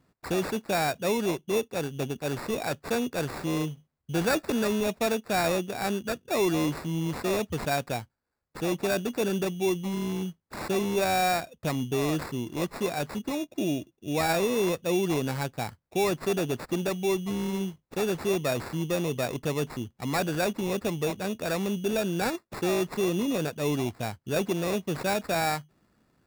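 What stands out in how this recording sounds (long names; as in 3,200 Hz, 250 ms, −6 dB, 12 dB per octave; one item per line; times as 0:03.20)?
aliases and images of a low sample rate 3,100 Hz, jitter 0%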